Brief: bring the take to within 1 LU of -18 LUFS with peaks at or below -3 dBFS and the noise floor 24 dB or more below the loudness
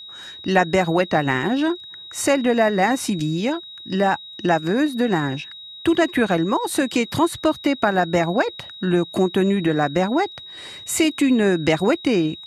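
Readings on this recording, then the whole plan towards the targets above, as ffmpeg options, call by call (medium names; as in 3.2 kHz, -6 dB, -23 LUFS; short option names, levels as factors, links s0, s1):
steady tone 3.8 kHz; tone level -36 dBFS; loudness -20.5 LUFS; peak level -4.0 dBFS; loudness target -18.0 LUFS
-> -af "bandreject=f=3800:w=30"
-af "volume=1.33,alimiter=limit=0.708:level=0:latency=1"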